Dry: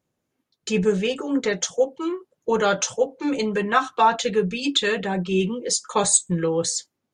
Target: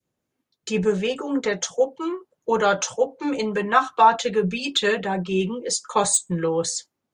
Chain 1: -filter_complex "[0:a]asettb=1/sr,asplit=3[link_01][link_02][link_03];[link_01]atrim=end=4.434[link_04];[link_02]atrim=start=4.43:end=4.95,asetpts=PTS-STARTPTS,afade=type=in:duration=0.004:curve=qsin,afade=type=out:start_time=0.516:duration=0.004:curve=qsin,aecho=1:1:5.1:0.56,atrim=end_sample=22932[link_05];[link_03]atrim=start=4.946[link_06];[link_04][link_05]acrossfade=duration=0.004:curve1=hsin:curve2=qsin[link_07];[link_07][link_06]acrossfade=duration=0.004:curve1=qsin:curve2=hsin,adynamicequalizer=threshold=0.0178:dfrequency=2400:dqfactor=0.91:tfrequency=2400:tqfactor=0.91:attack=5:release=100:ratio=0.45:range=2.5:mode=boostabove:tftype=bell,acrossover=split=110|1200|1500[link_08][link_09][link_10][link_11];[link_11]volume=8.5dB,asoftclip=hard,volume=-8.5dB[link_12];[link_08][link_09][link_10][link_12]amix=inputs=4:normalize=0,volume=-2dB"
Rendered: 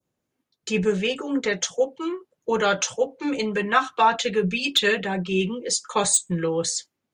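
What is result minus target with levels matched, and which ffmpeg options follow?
2,000 Hz band +2.5 dB
-filter_complex "[0:a]asettb=1/sr,asplit=3[link_01][link_02][link_03];[link_01]atrim=end=4.434[link_04];[link_02]atrim=start=4.43:end=4.95,asetpts=PTS-STARTPTS,afade=type=in:duration=0.004:curve=qsin,afade=type=out:start_time=0.516:duration=0.004:curve=qsin,aecho=1:1:5.1:0.56,atrim=end_sample=22932[link_05];[link_03]atrim=start=4.946[link_06];[link_04][link_05]acrossfade=duration=0.004:curve1=hsin:curve2=qsin[link_07];[link_07][link_06]acrossfade=duration=0.004:curve1=qsin:curve2=hsin,adynamicequalizer=threshold=0.0178:dfrequency=920:dqfactor=0.91:tfrequency=920:tqfactor=0.91:attack=5:release=100:ratio=0.45:range=2.5:mode=boostabove:tftype=bell,acrossover=split=110|1200|1500[link_08][link_09][link_10][link_11];[link_11]volume=8.5dB,asoftclip=hard,volume=-8.5dB[link_12];[link_08][link_09][link_10][link_12]amix=inputs=4:normalize=0,volume=-2dB"

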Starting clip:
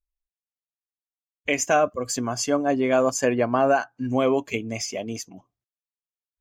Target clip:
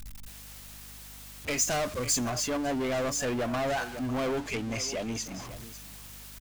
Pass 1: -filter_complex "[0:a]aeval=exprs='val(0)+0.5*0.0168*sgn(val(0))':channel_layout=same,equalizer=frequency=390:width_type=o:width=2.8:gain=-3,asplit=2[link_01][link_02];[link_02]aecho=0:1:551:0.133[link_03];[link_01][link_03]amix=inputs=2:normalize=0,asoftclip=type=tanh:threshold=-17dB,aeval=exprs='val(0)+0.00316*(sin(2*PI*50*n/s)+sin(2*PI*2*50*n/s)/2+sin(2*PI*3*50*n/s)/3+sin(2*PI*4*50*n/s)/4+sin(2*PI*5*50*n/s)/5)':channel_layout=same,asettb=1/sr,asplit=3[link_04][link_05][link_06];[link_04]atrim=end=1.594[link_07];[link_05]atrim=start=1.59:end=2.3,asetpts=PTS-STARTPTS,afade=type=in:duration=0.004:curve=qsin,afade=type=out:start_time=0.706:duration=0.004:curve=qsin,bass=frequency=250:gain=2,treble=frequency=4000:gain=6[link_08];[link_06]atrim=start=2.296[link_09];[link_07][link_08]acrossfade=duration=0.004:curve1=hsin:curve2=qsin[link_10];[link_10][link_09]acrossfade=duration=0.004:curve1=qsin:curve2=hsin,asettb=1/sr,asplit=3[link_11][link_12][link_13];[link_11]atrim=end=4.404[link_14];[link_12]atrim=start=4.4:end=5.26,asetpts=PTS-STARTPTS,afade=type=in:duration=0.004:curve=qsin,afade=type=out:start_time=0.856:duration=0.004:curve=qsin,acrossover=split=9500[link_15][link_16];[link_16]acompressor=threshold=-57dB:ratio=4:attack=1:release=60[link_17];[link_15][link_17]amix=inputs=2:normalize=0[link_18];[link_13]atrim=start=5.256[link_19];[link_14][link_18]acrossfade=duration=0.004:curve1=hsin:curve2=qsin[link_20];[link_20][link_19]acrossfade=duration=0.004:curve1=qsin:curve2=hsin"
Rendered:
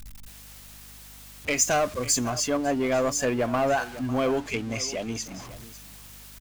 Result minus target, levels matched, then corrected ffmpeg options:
soft clipping: distortion −9 dB
-filter_complex "[0:a]aeval=exprs='val(0)+0.5*0.0168*sgn(val(0))':channel_layout=same,equalizer=frequency=390:width_type=o:width=2.8:gain=-3,asplit=2[link_01][link_02];[link_02]aecho=0:1:551:0.133[link_03];[link_01][link_03]amix=inputs=2:normalize=0,asoftclip=type=tanh:threshold=-27dB,aeval=exprs='val(0)+0.00316*(sin(2*PI*50*n/s)+sin(2*PI*2*50*n/s)/2+sin(2*PI*3*50*n/s)/3+sin(2*PI*4*50*n/s)/4+sin(2*PI*5*50*n/s)/5)':channel_layout=same,asettb=1/sr,asplit=3[link_04][link_05][link_06];[link_04]atrim=end=1.594[link_07];[link_05]atrim=start=1.59:end=2.3,asetpts=PTS-STARTPTS,afade=type=in:duration=0.004:curve=qsin,afade=type=out:start_time=0.706:duration=0.004:curve=qsin,bass=frequency=250:gain=2,treble=frequency=4000:gain=6[link_08];[link_06]atrim=start=2.296[link_09];[link_07][link_08]acrossfade=duration=0.004:curve1=hsin:curve2=qsin[link_10];[link_10][link_09]acrossfade=duration=0.004:curve1=qsin:curve2=hsin,asettb=1/sr,asplit=3[link_11][link_12][link_13];[link_11]atrim=end=4.404[link_14];[link_12]atrim=start=4.4:end=5.26,asetpts=PTS-STARTPTS,afade=type=in:duration=0.004:curve=qsin,afade=type=out:start_time=0.856:duration=0.004:curve=qsin,acrossover=split=9500[link_15][link_16];[link_16]acompressor=threshold=-57dB:ratio=4:attack=1:release=60[link_17];[link_15][link_17]amix=inputs=2:normalize=0[link_18];[link_13]atrim=start=5.256[link_19];[link_14][link_18]acrossfade=duration=0.004:curve1=hsin:curve2=qsin[link_20];[link_20][link_19]acrossfade=duration=0.004:curve1=qsin:curve2=hsin"

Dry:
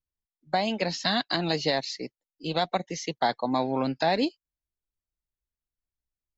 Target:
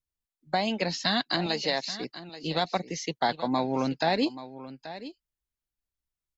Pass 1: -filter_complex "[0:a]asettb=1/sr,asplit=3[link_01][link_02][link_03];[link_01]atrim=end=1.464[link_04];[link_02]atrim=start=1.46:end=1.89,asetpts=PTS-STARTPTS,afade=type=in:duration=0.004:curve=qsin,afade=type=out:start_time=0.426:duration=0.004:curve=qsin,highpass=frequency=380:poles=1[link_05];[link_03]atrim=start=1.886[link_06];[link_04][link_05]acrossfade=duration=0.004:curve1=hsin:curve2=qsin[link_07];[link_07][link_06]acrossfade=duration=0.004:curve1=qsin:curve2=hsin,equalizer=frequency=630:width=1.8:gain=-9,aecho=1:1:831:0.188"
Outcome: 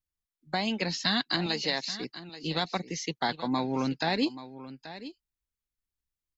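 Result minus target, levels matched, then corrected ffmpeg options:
500 Hz band −3.0 dB
-filter_complex "[0:a]asettb=1/sr,asplit=3[link_01][link_02][link_03];[link_01]atrim=end=1.464[link_04];[link_02]atrim=start=1.46:end=1.89,asetpts=PTS-STARTPTS,afade=type=in:duration=0.004:curve=qsin,afade=type=out:start_time=0.426:duration=0.004:curve=qsin,highpass=frequency=380:poles=1[link_05];[link_03]atrim=start=1.886[link_06];[link_04][link_05]acrossfade=duration=0.004:curve1=hsin:curve2=qsin[link_07];[link_07][link_06]acrossfade=duration=0.004:curve1=qsin:curve2=hsin,equalizer=frequency=630:width=1.8:gain=-2,aecho=1:1:831:0.188"

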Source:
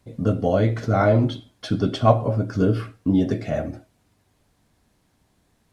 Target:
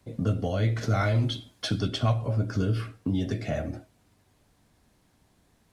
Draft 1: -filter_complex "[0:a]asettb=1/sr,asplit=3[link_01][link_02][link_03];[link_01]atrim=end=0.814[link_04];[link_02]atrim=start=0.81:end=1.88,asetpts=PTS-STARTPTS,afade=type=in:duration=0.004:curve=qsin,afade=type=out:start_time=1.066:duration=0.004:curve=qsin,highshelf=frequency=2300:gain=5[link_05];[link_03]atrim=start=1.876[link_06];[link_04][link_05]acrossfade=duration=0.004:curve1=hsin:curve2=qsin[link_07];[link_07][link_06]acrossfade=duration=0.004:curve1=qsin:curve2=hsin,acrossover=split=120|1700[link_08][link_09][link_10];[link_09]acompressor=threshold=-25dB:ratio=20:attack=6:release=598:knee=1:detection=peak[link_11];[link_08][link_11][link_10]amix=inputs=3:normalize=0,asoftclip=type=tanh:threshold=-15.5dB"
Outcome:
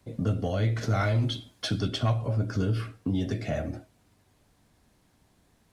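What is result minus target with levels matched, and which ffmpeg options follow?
soft clipping: distortion +20 dB
-filter_complex "[0:a]asettb=1/sr,asplit=3[link_01][link_02][link_03];[link_01]atrim=end=0.814[link_04];[link_02]atrim=start=0.81:end=1.88,asetpts=PTS-STARTPTS,afade=type=in:duration=0.004:curve=qsin,afade=type=out:start_time=1.066:duration=0.004:curve=qsin,highshelf=frequency=2300:gain=5[link_05];[link_03]atrim=start=1.876[link_06];[link_04][link_05]acrossfade=duration=0.004:curve1=hsin:curve2=qsin[link_07];[link_07][link_06]acrossfade=duration=0.004:curve1=qsin:curve2=hsin,acrossover=split=120|1700[link_08][link_09][link_10];[link_09]acompressor=threshold=-25dB:ratio=20:attack=6:release=598:knee=1:detection=peak[link_11];[link_08][link_11][link_10]amix=inputs=3:normalize=0,asoftclip=type=tanh:threshold=-4.5dB"

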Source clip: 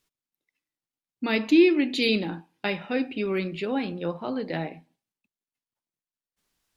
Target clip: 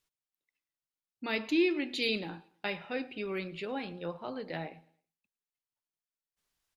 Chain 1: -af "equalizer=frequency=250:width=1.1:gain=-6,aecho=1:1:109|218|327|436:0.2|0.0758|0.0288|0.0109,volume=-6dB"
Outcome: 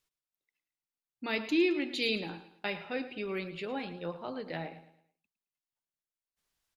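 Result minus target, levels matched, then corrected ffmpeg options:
echo-to-direct +9 dB
-af "equalizer=frequency=250:width=1.1:gain=-6,aecho=1:1:109|218|327:0.0708|0.0269|0.0102,volume=-6dB"

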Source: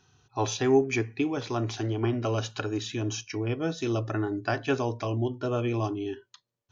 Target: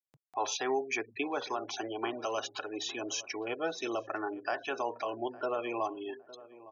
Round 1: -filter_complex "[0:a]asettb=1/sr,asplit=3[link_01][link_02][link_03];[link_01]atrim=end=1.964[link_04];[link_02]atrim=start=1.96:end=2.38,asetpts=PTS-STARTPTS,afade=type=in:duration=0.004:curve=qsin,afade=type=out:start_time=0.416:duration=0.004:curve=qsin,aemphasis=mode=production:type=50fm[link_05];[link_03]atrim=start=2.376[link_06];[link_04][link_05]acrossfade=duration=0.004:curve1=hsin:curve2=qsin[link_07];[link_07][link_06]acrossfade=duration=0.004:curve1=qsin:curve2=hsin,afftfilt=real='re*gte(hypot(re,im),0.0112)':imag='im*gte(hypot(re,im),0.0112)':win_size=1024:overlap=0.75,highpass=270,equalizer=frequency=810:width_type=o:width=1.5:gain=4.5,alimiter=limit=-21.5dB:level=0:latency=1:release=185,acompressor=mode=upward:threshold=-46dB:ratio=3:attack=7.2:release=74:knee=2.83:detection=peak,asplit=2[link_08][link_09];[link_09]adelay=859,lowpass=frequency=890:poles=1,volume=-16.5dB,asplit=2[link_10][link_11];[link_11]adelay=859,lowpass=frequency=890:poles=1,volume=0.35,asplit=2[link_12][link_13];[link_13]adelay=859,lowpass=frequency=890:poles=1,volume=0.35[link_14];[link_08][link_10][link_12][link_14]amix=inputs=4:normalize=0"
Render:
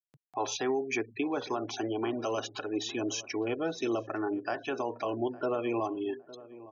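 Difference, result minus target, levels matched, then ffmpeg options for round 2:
250 Hz band +4.5 dB
-filter_complex "[0:a]asettb=1/sr,asplit=3[link_01][link_02][link_03];[link_01]atrim=end=1.964[link_04];[link_02]atrim=start=1.96:end=2.38,asetpts=PTS-STARTPTS,afade=type=in:duration=0.004:curve=qsin,afade=type=out:start_time=0.416:duration=0.004:curve=qsin,aemphasis=mode=production:type=50fm[link_05];[link_03]atrim=start=2.376[link_06];[link_04][link_05]acrossfade=duration=0.004:curve1=hsin:curve2=qsin[link_07];[link_07][link_06]acrossfade=duration=0.004:curve1=qsin:curve2=hsin,afftfilt=real='re*gte(hypot(re,im),0.0112)':imag='im*gte(hypot(re,im),0.0112)':win_size=1024:overlap=0.75,highpass=550,equalizer=frequency=810:width_type=o:width=1.5:gain=4.5,alimiter=limit=-21.5dB:level=0:latency=1:release=185,acompressor=mode=upward:threshold=-46dB:ratio=3:attack=7.2:release=74:knee=2.83:detection=peak,asplit=2[link_08][link_09];[link_09]adelay=859,lowpass=frequency=890:poles=1,volume=-16.5dB,asplit=2[link_10][link_11];[link_11]adelay=859,lowpass=frequency=890:poles=1,volume=0.35,asplit=2[link_12][link_13];[link_13]adelay=859,lowpass=frequency=890:poles=1,volume=0.35[link_14];[link_08][link_10][link_12][link_14]amix=inputs=4:normalize=0"

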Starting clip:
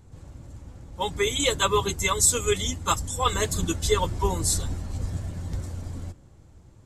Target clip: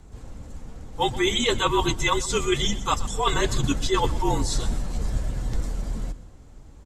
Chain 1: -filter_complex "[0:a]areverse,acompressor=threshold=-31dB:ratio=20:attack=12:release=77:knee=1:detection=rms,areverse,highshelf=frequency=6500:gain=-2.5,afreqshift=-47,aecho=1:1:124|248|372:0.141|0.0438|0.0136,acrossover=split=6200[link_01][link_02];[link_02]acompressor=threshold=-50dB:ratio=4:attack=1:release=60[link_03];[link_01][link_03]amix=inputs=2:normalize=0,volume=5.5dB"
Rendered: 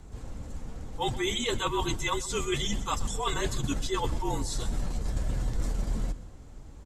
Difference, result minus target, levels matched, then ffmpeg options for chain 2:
downward compressor: peak gain reduction +7.5 dB
-filter_complex "[0:a]areverse,acompressor=threshold=-23dB:ratio=20:attack=12:release=77:knee=1:detection=rms,areverse,highshelf=frequency=6500:gain=-2.5,afreqshift=-47,aecho=1:1:124|248|372:0.141|0.0438|0.0136,acrossover=split=6200[link_01][link_02];[link_02]acompressor=threshold=-50dB:ratio=4:attack=1:release=60[link_03];[link_01][link_03]amix=inputs=2:normalize=0,volume=5.5dB"

